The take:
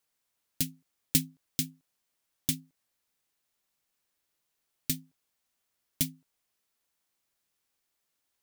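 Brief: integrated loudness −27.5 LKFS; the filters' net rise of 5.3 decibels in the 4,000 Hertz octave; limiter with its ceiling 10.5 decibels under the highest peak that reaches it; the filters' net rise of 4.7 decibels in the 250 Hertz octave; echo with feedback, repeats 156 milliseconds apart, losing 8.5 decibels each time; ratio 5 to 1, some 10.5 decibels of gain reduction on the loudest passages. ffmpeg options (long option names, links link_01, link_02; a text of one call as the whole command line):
ffmpeg -i in.wav -af "equalizer=frequency=250:width_type=o:gain=5.5,equalizer=frequency=4000:width_type=o:gain=6.5,acompressor=threshold=-29dB:ratio=5,alimiter=limit=-19dB:level=0:latency=1,aecho=1:1:156|312|468|624:0.376|0.143|0.0543|0.0206,volume=16.5dB" out.wav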